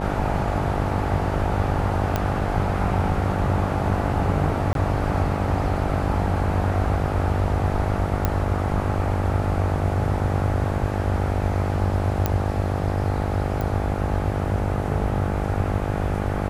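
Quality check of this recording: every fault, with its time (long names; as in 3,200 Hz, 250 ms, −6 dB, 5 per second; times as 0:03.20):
mains buzz 50 Hz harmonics 17 −27 dBFS
0:02.16: click −8 dBFS
0:04.73–0:04.75: drop-out 22 ms
0:08.25: click −7 dBFS
0:12.26: click −7 dBFS
0:13.61: click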